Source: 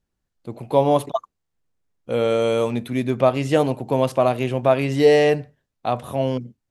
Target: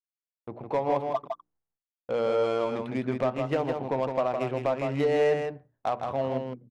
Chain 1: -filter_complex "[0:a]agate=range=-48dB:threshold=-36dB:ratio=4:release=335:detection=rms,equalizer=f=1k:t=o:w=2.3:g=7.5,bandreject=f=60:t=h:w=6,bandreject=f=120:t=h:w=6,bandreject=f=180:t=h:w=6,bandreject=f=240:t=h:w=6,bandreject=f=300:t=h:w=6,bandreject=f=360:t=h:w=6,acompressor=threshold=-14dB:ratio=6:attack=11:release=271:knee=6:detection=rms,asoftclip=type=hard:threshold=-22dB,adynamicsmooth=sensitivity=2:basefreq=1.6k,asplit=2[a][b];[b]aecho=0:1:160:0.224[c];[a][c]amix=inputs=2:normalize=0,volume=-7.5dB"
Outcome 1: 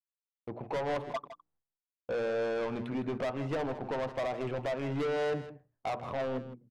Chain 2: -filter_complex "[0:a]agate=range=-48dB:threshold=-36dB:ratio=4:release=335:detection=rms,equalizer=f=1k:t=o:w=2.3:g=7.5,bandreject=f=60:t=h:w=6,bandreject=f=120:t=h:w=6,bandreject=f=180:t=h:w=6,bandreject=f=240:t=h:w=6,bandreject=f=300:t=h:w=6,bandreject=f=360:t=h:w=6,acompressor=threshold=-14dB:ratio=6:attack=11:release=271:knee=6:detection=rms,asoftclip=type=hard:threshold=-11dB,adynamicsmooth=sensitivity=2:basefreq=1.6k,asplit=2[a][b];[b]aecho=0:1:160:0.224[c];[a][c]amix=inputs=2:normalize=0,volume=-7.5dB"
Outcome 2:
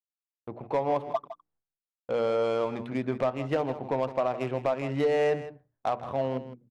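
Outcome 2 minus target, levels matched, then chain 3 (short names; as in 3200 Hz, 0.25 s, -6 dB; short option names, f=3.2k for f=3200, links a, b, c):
echo-to-direct -8 dB
-filter_complex "[0:a]agate=range=-48dB:threshold=-36dB:ratio=4:release=335:detection=rms,equalizer=f=1k:t=o:w=2.3:g=7.5,bandreject=f=60:t=h:w=6,bandreject=f=120:t=h:w=6,bandreject=f=180:t=h:w=6,bandreject=f=240:t=h:w=6,bandreject=f=300:t=h:w=6,bandreject=f=360:t=h:w=6,acompressor=threshold=-14dB:ratio=6:attack=11:release=271:knee=6:detection=rms,asoftclip=type=hard:threshold=-11dB,adynamicsmooth=sensitivity=2:basefreq=1.6k,asplit=2[a][b];[b]aecho=0:1:160:0.562[c];[a][c]amix=inputs=2:normalize=0,volume=-7.5dB"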